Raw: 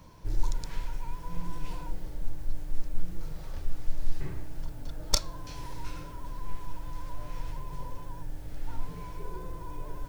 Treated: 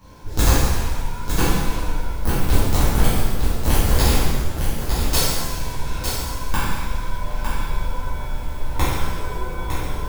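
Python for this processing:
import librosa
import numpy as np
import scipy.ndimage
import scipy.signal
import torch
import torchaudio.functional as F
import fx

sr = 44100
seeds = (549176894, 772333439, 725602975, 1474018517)

y = (np.mod(10.0 ** (18.5 / 20.0) * x + 1.0, 2.0) - 1.0) / 10.0 ** (18.5 / 20.0)
y = y + 10.0 ** (-6.5 / 20.0) * np.pad(y, (int(906 * sr / 1000.0), 0))[:len(y)]
y = fx.rev_shimmer(y, sr, seeds[0], rt60_s=1.2, semitones=7, shimmer_db=-8, drr_db=-12.0)
y = y * 10.0 ** (-1.5 / 20.0)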